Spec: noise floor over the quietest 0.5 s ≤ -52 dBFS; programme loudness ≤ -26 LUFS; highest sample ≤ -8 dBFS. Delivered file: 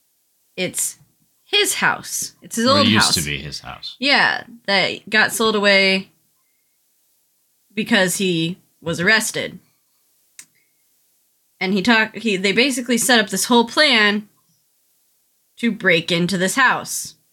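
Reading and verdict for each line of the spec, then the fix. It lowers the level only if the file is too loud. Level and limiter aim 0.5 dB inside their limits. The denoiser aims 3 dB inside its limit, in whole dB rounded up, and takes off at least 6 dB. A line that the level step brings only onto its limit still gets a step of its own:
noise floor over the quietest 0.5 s -64 dBFS: pass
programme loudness -17.0 LUFS: fail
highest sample -3.5 dBFS: fail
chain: trim -9.5 dB

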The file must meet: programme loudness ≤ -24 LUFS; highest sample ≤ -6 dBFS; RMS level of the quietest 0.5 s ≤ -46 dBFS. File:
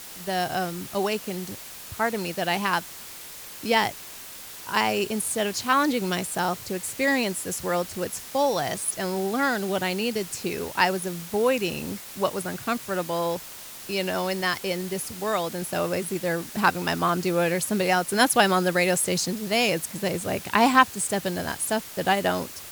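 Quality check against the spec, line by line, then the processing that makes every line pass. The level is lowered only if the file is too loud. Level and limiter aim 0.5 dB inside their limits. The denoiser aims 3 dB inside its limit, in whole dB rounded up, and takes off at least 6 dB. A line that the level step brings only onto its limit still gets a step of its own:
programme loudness -25.5 LUFS: pass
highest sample -2.5 dBFS: fail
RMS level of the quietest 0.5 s -41 dBFS: fail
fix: noise reduction 8 dB, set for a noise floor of -41 dBFS; peak limiter -6.5 dBFS

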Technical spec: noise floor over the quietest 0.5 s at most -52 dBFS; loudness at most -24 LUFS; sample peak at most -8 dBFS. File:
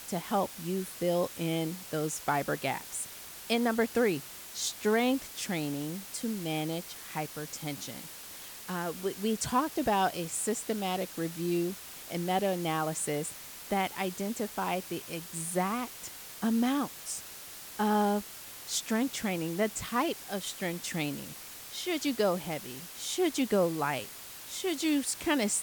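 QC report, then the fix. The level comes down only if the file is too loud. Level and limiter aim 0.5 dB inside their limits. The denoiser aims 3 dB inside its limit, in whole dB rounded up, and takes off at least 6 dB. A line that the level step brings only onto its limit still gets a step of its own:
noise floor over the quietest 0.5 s -46 dBFS: fail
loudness -32.0 LUFS: pass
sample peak -14.5 dBFS: pass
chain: noise reduction 9 dB, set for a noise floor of -46 dBFS

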